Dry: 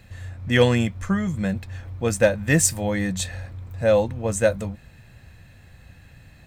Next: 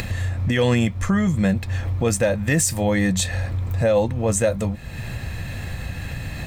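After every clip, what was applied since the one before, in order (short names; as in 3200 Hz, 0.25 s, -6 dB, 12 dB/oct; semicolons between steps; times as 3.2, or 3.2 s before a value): notch 1500 Hz, Q 16; upward compressor, threshold -21 dBFS; limiter -15.5 dBFS, peak gain reduction 9.5 dB; gain +5 dB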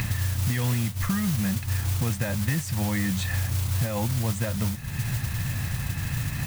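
graphic EQ 125/250/500/1000/2000/8000 Hz +11/+3/-9/+6/+4/-8 dB; compressor, threshold -18 dBFS, peak gain reduction 10.5 dB; modulation noise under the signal 11 dB; gain -5 dB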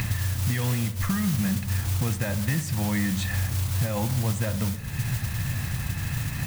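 darkening echo 63 ms, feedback 69%, level -13.5 dB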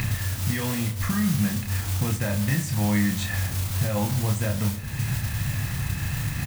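doubler 29 ms -4 dB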